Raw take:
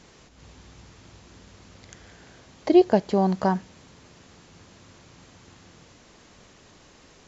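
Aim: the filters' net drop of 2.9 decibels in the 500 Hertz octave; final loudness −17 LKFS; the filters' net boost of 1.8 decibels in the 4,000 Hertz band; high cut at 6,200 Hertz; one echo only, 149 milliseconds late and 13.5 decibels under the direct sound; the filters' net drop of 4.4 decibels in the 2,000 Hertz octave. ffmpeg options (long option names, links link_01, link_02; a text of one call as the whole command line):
ffmpeg -i in.wav -af "lowpass=6200,equalizer=frequency=500:width_type=o:gain=-4.5,equalizer=frequency=2000:width_type=o:gain=-7,equalizer=frequency=4000:width_type=o:gain=5.5,aecho=1:1:149:0.211,volume=7dB" out.wav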